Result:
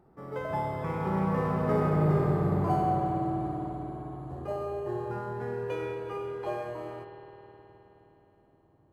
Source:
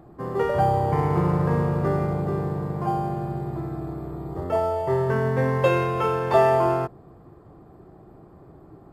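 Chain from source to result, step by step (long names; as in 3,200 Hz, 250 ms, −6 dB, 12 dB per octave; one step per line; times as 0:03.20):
source passing by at 0:02.32, 33 m/s, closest 24 metres
spring reverb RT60 3.9 s, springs 52 ms, chirp 25 ms, DRR 1 dB
level −2 dB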